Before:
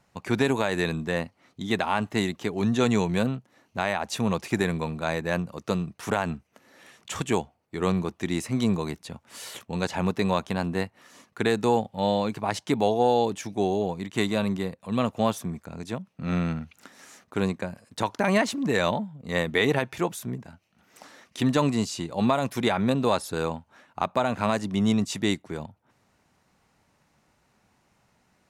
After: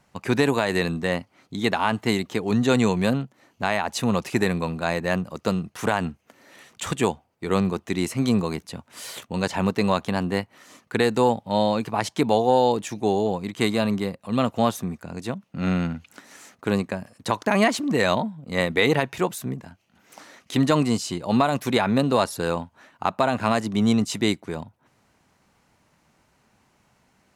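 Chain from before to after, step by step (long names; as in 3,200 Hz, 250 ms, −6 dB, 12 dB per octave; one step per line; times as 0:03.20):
wrong playback speed 24 fps film run at 25 fps
level +3 dB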